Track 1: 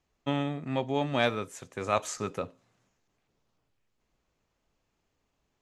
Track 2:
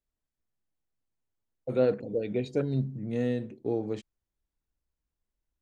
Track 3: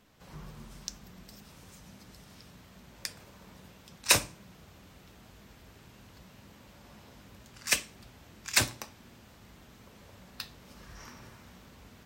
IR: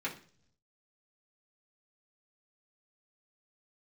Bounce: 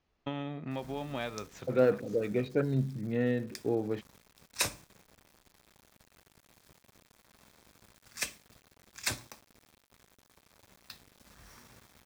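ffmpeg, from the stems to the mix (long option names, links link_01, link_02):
-filter_complex "[0:a]lowpass=frequency=5500:width=0.5412,lowpass=frequency=5500:width=1.3066,acompressor=threshold=-36dB:ratio=3,volume=0dB[link_01];[1:a]lowpass=3800,equalizer=frequency=1600:width=1.5:gain=7.5,volume=-1dB,asplit=2[link_02][link_03];[2:a]acrusher=bits=7:mix=0:aa=0.000001,bandreject=frequency=2900:width=13,adelay=500,volume=-8dB[link_04];[link_03]apad=whole_len=247625[link_05];[link_01][link_05]sidechaincompress=threshold=-35dB:ratio=8:attack=16:release=1370[link_06];[link_06][link_02][link_04]amix=inputs=3:normalize=0"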